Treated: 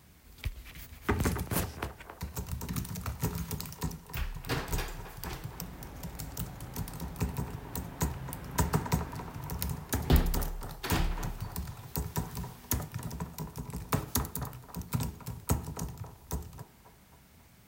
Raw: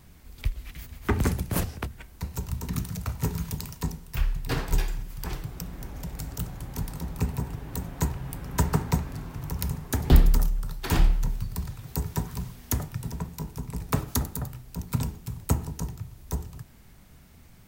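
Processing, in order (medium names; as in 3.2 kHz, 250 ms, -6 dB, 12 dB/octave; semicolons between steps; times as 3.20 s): high-pass 53 Hz; bass shelf 390 Hz -3.5 dB; on a send: band-passed feedback delay 270 ms, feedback 55%, band-pass 830 Hz, level -8 dB; on the sum: trim -2 dB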